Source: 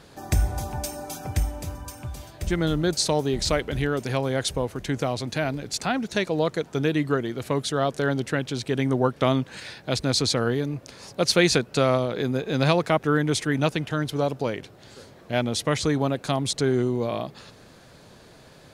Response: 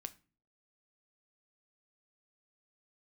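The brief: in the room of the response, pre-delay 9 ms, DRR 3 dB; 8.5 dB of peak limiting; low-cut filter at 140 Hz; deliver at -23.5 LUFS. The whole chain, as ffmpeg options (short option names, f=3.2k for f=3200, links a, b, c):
-filter_complex "[0:a]highpass=140,alimiter=limit=-13dB:level=0:latency=1,asplit=2[a][b];[1:a]atrim=start_sample=2205,adelay=9[c];[b][c]afir=irnorm=-1:irlink=0,volume=1dB[d];[a][d]amix=inputs=2:normalize=0,volume=2dB"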